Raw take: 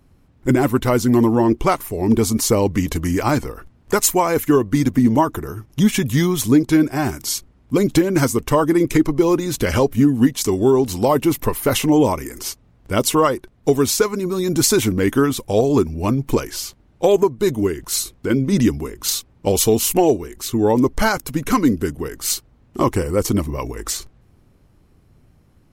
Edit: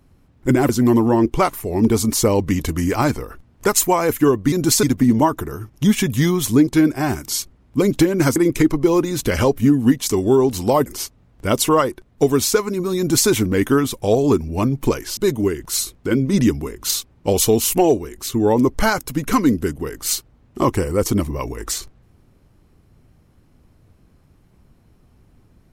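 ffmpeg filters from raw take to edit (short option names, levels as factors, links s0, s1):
-filter_complex "[0:a]asplit=7[s0][s1][s2][s3][s4][s5][s6];[s0]atrim=end=0.692[s7];[s1]atrim=start=0.958:end=4.792[s8];[s2]atrim=start=14.438:end=14.752[s9];[s3]atrim=start=4.788:end=8.322[s10];[s4]atrim=start=8.708:end=11.212[s11];[s5]atrim=start=12.318:end=16.632[s12];[s6]atrim=start=17.358[s13];[s7][s8]acrossfade=d=0.004:c1=hsin:c2=hsin[s14];[s14][s9]acrossfade=d=0.004:c1=hsin:c2=hsin[s15];[s15][s10]acrossfade=d=0.004:c1=hsin:c2=hsin[s16];[s16][s11]acrossfade=d=0.004:c1=hsin:c2=hsin[s17];[s17][s12]acrossfade=d=0.004:c1=hsin:c2=hsin[s18];[s18][s13]acrossfade=d=0.004:c1=hsin:c2=hsin"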